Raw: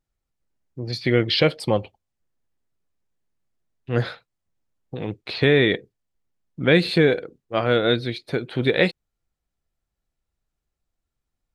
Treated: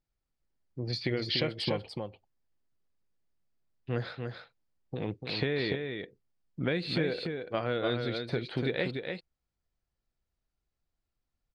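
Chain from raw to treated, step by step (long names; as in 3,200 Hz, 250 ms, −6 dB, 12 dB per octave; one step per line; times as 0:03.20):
high-frequency loss of the air 61 metres
downward compressor 6 to 1, threshold −23 dBFS, peak gain reduction 11.5 dB
parametric band 4,700 Hz +5 dB 0.25 octaves
single-tap delay 292 ms −5.5 dB
level −4.5 dB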